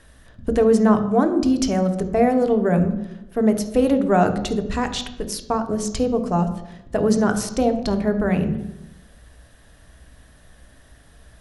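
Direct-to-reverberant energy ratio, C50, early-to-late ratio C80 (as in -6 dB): 7.0 dB, 10.5 dB, 13.0 dB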